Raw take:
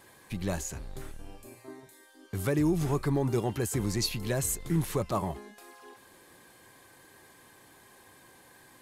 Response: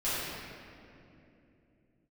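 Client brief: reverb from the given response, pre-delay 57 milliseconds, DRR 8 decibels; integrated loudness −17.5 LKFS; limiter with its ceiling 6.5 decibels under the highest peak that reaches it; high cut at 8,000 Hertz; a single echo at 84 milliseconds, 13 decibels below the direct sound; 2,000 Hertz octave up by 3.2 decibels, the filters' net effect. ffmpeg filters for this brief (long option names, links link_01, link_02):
-filter_complex "[0:a]lowpass=8000,equalizer=frequency=2000:width_type=o:gain=4,alimiter=limit=-22.5dB:level=0:latency=1,aecho=1:1:84:0.224,asplit=2[link_01][link_02];[1:a]atrim=start_sample=2205,adelay=57[link_03];[link_02][link_03]afir=irnorm=-1:irlink=0,volume=-17.5dB[link_04];[link_01][link_04]amix=inputs=2:normalize=0,volume=15dB"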